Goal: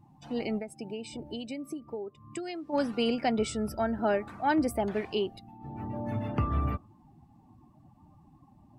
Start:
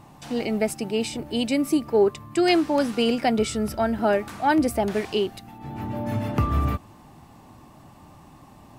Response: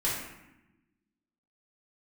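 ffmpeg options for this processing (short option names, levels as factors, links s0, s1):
-filter_complex "[0:a]asplit=3[s0][s1][s2];[s0]afade=t=out:st=0.58:d=0.02[s3];[s1]acompressor=threshold=0.0398:ratio=20,afade=t=in:st=0.58:d=0.02,afade=t=out:st=2.72:d=0.02[s4];[s2]afade=t=in:st=2.72:d=0.02[s5];[s3][s4][s5]amix=inputs=3:normalize=0,afftdn=nr=18:nf=-42,volume=0.501"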